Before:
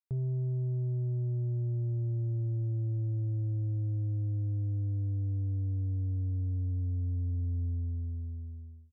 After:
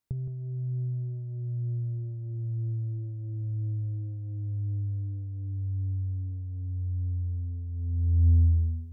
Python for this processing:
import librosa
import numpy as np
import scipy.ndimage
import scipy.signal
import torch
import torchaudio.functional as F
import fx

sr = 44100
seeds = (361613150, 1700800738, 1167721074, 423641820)

y = fx.over_compress(x, sr, threshold_db=-37.0, ratio=-0.5)
y = fx.low_shelf(y, sr, hz=290.0, db=10.5)
y = y + 10.0 ** (-9.5 / 20.0) * np.pad(y, (int(167 * sr / 1000.0), 0))[:len(y)]